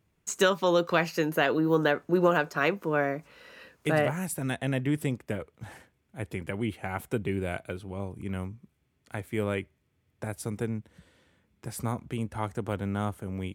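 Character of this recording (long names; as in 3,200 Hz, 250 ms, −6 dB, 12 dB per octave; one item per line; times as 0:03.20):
background noise floor −73 dBFS
spectral slope −5.0 dB per octave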